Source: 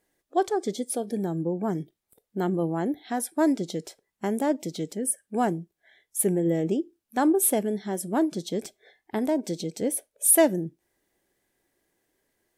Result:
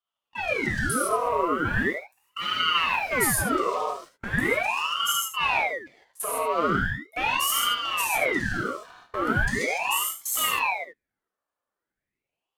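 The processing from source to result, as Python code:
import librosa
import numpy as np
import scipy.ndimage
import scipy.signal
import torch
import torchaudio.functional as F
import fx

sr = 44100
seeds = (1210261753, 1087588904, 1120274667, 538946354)

p1 = fx.band_swap(x, sr, width_hz=500)
p2 = fx.peak_eq(p1, sr, hz=1200.0, db=12.5, octaves=2.2)
p3 = fx.transient(p2, sr, attack_db=-7, sustain_db=4)
p4 = fx.leveller(p3, sr, passes=2)
p5 = fx.level_steps(p4, sr, step_db=21)
p6 = fx.bass_treble(p5, sr, bass_db=10, treble_db=5, at=(1.73, 3.45))
p7 = p6 + fx.echo_single(p6, sr, ms=75, db=-10.0, dry=0)
p8 = fx.rev_gated(p7, sr, seeds[0], gate_ms=180, shape='flat', drr_db=-5.5)
p9 = fx.ring_lfo(p8, sr, carrier_hz=1200.0, swing_pct=80, hz=0.39)
y = F.gain(torch.from_numpy(p9), -7.5).numpy()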